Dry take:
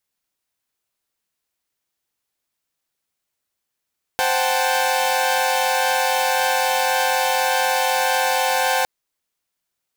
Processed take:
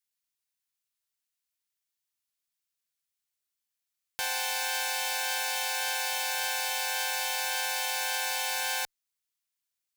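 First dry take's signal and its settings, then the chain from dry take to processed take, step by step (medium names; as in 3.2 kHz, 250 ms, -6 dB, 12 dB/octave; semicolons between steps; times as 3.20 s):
chord C5/F#5/G5/A5 saw, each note -20.5 dBFS 4.66 s
amplifier tone stack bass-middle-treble 5-5-5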